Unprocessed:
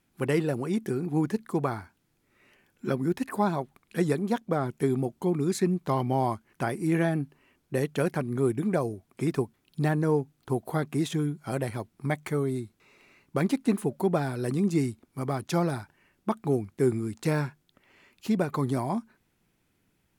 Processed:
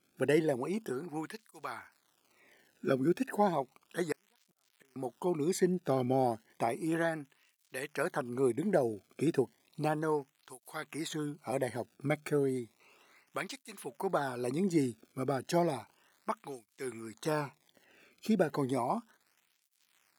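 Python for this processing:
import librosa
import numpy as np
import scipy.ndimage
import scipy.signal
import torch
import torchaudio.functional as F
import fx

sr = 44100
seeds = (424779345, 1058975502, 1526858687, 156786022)

y = fx.gate_flip(x, sr, shuts_db=-25.0, range_db=-36, at=(4.12, 4.96))
y = fx.dmg_crackle(y, sr, seeds[0], per_s=220.0, level_db=-50.0)
y = fx.flanger_cancel(y, sr, hz=0.33, depth_ms=1.1)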